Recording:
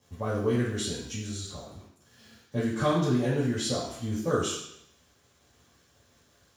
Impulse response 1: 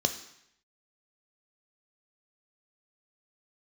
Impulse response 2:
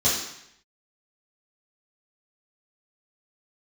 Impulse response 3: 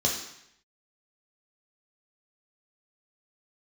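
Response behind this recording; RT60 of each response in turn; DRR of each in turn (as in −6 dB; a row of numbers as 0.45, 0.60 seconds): 2; 0.75, 0.75, 0.75 seconds; 7.5, −10.0, −1.5 decibels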